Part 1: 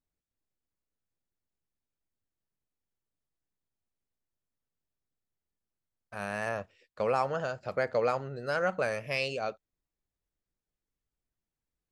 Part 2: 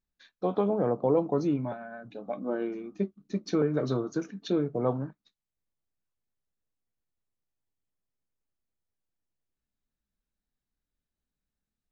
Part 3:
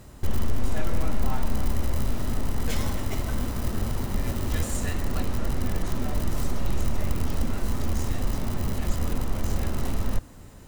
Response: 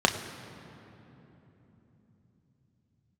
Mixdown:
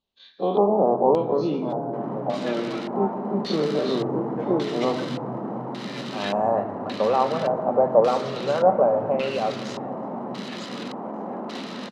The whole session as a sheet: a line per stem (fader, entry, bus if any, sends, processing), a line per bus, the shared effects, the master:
0.0 dB, 0.00 s, send -10.5 dB, no echo send, treble ducked by the level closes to 1500 Hz, closed at -28 dBFS
-8.0 dB, 0.00 s, send -8.5 dB, echo send -9 dB, spectral dilation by 60 ms
+1.5 dB, 1.70 s, no send, no echo send, steep high-pass 180 Hz 72 dB/oct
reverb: on, RT60 3.5 s, pre-delay 3 ms
echo: echo 0.131 s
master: low shelf 78 Hz -9 dB; LFO low-pass square 0.87 Hz 850–4000 Hz

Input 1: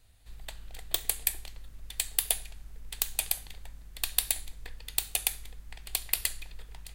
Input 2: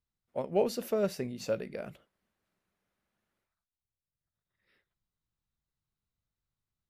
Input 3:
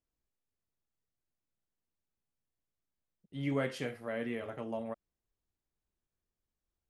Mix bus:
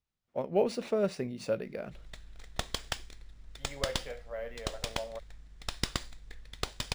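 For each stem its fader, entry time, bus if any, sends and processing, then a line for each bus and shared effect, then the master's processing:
-4.0 dB, 1.65 s, no send, minimum comb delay 0.52 ms
+0.5 dB, 0.00 s, no send, dry
-5.5 dB, 0.25 s, no send, resonant low shelf 410 Hz -8.5 dB, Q 3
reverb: off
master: decimation joined by straight lines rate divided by 3×

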